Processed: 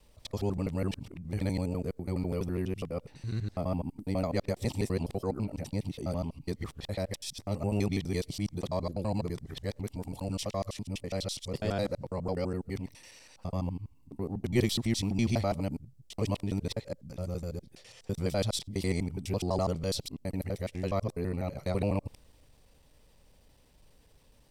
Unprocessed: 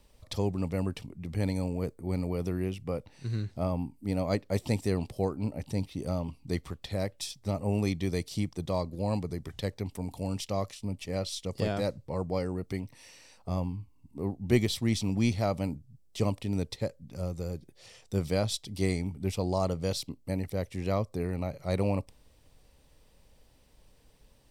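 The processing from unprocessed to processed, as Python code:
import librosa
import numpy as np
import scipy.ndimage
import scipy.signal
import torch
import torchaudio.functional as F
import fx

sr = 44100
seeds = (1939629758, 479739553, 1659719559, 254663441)

y = fx.local_reverse(x, sr, ms=83.0)
y = fx.transient(y, sr, attack_db=-4, sustain_db=1)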